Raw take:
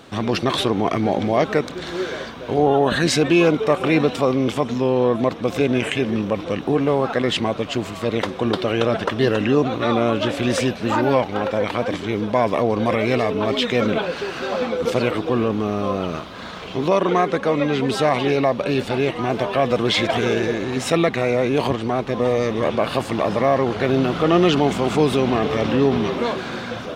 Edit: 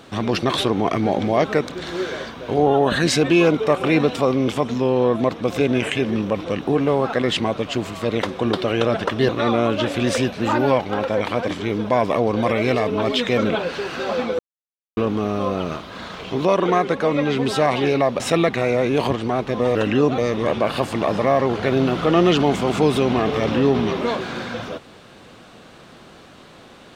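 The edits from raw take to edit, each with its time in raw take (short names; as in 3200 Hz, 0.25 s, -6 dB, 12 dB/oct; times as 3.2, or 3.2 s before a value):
9.29–9.72 move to 22.35
14.82–15.4 mute
18.63–20.8 cut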